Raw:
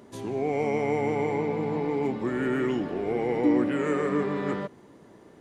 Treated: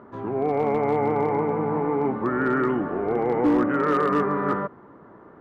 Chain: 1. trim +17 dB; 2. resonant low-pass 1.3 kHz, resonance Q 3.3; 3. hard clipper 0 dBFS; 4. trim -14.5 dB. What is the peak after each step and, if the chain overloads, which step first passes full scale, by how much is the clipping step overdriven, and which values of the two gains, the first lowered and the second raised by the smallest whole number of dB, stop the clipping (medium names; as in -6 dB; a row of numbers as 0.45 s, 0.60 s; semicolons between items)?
+5.0 dBFS, +5.5 dBFS, 0.0 dBFS, -14.5 dBFS; step 1, 5.5 dB; step 1 +11 dB, step 4 -8.5 dB